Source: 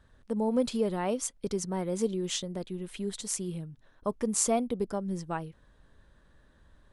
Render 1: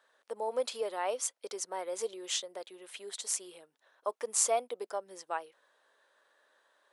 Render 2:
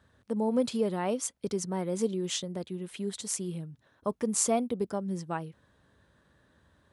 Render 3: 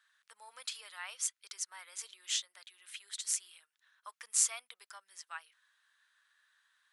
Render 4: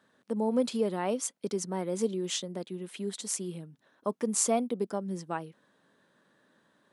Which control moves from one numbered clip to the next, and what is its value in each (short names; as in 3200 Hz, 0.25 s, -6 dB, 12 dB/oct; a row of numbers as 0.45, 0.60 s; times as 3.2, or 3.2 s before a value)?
HPF, cutoff: 500, 73, 1400, 180 Hz